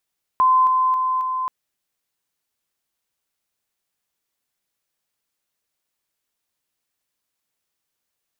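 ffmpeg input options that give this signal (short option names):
-f lavfi -i "aevalsrc='pow(10,(-12-3*floor(t/0.27))/20)*sin(2*PI*1030*t)':d=1.08:s=44100"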